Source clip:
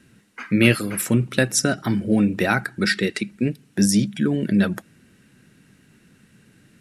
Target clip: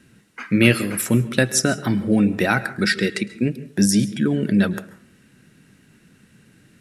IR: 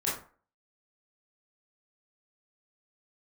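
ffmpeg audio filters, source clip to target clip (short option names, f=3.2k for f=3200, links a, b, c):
-filter_complex "[0:a]asplit=2[a][b];[1:a]atrim=start_sample=2205,adelay=107[c];[b][c]afir=irnorm=-1:irlink=0,volume=-22dB[d];[a][d]amix=inputs=2:normalize=0,volume=1dB"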